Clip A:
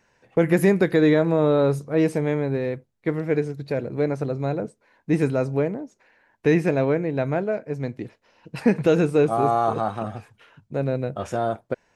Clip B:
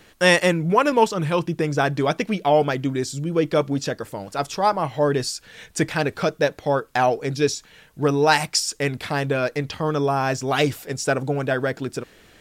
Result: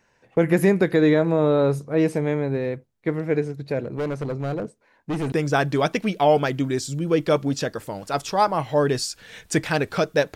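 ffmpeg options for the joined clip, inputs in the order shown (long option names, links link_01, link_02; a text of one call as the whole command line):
ffmpeg -i cue0.wav -i cue1.wav -filter_complex "[0:a]asettb=1/sr,asplit=3[link_01][link_02][link_03];[link_01]atrim=end=3.844[link_04];[link_02]atrim=start=3.84:end=5.32,asetpts=PTS-STARTPTS,afade=type=in:duration=0.004:curve=qsin,afade=type=out:start_time=1.476:duration=0.004:curve=qsin,asoftclip=type=hard:threshold=-22.5dB[link_05];[link_03]atrim=start=5.316[link_06];[link_04][link_05]acrossfade=duration=0.004:curve1=hsin:curve2=qsin[link_07];[link_07][link_06]acrossfade=duration=0.004:curve1=qsin:curve2=hsin,apad=whole_dur=10.35,atrim=end=10.35,atrim=end=5.322[link_08];[1:a]atrim=start=1.568:end=6.6[link_09];[link_08][link_09]acrossfade=duration=0.004:curve1=hsin:curve2=hsin" out.wav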